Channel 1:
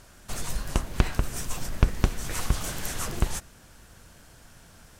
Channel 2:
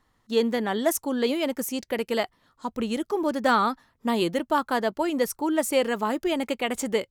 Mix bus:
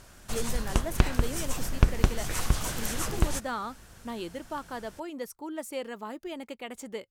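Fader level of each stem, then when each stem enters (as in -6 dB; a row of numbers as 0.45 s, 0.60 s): 0.0 dB, -12.5 dB; 0.00 s, 0.00 s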